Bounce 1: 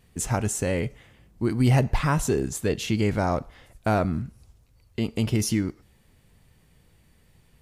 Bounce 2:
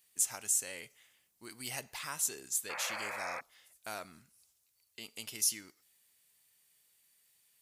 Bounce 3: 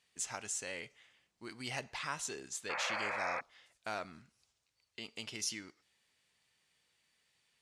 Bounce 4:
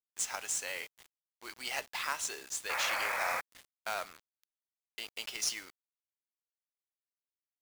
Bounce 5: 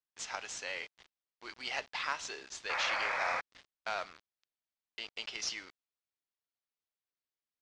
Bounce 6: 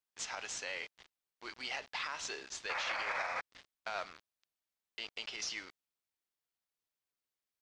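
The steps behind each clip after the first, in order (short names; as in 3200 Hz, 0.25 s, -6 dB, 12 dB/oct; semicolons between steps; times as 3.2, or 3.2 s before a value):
differentiator; painted sound noise, 2.69–3.41, 490–2600 Hz -41 dBFS
air absorption 120 m; gain +3.5 dB
HPF 600 Hz 12 dB/oct; companded quantiser 4-bit; gain +4 dB
LPF 5500 Hz 24 dB/oct
limiter -29 dBFS, peak gain reduction 9 dB; gain +1 dB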